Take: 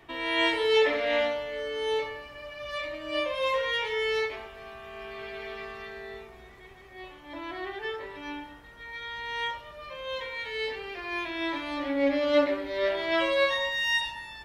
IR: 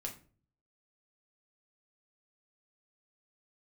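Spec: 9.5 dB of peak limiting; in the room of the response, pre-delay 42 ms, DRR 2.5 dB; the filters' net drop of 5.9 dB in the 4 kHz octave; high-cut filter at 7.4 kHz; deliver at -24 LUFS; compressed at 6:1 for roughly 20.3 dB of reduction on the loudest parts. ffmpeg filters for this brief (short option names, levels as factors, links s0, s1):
-filter_complex "[0:a]lowpass=7400,equalizer=f=4000:t=o:g=-8,acompressor=threshold=0.00891:ratio=6,alimiter=level_in=7.08:limit=0.0631:level=0:latency=1,volume=0.141,asplit=2[s0][s1];[1:a]atrim=start_sample=2205,adelay=42[s2];[s1][s2]afir=irnorm=-1:irlink=0,volume=0.841[s3];[s0][s3]amix=inputs=2:normalize=0,volume=14.1"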